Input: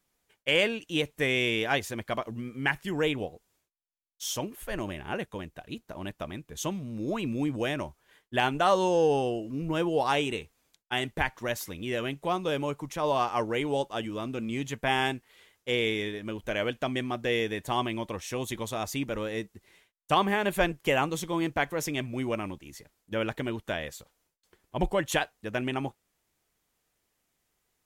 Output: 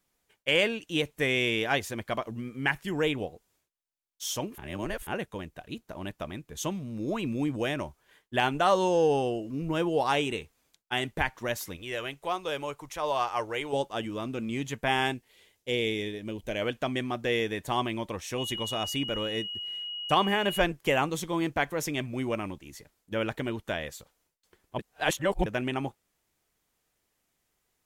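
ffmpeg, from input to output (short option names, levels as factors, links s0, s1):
-filter_complex "[0:a]asettb=1/sr,asplit=3[s0][s1][s2];[s0]atrim=end=11.764[s3];[s1]atrim=start=11.76:end=13.73,asetpts=PTS-STARTPTS,afade=t=in:d=0.004:c=qsin,afade=t=out:st=1.966:d=0.004:c=qsin,equalizer=f=200:w=0.89:g=-13.5[s4];[s2]atrim=start=13.726[s5];[s3][s4]acrossfade=d=0.004:c1=hsin:c2=qsin[s6];[s6][s5]acrossfade=d=0.004:c1=qsin:c2=hsin,asettb=1/sr,asplit=3[s7][s8][s9];[s7]atrim=end=15.144[s10];[s8]atrim=start=15.14:end=16.62,asetpts=PTS-STARTPTS,afade=t=in:d=0.004:c=qsin,afade=t=out:st=1.476:d=0.004:c=qsin,equalizer=f=1300:w=1.4:g=-9.5[s11];[s9]atrim=start=16.616[s12];[s10][s11]acrossfade=d=0.004:c1=hsin:c2=qsin[s13];[s13][s12]acrossfade=d=0.004:c1=qsin:c2=hsin,asettb=1/sr,asplit=3[s14][s15][s16];[s14]atrim=end=18.384[s17];[s15]atrim=start=18.38:end=20.62,asetpts=PTS-STARTPTS,afade=t=in:d=0.004:c=qsin,afade=t=out:st=2.236:d=0.004:c=qsin,aeval=exprs='val(0)+0.02*sin(2*PI*2900*n/s)':c=same[s18];[s16]atrim=start=20.616[s19];[s17][s18]acrossfade=d=0.004:c1=hsin:c2=qsin[s20];[s20][s19]acrossfade=d=0.004:c1=qsin:c2=hsin,asplit=5[s21][s22][s23][s24][s25];[s21]atrim=end=4.582[s26];[s22]atrim=start=4.578:end=5.072,asetpts=PTS-STARTPTS,areverse[s27];[s23]atrim=start=5.068:end=24.792[s28];[s24]atrim=start=24.788:end=25.462,asetpts=PTS-STARTPTS,areverse[s29];[s25]atrim=start=25.458[s30];[s26][s27]acrossfade=d=0.004:c1=hsin:c2=hsin[s31];[s31][s28]acrossfade=d=0.004:c1=hsin:c2=hsin[s32];[s32][s29]acrossfade=d=0.004:c1=hsin:c2=hsin[s33];[s33][s30]acrossfade=d=0.004:c1=hsin:c2=hsin"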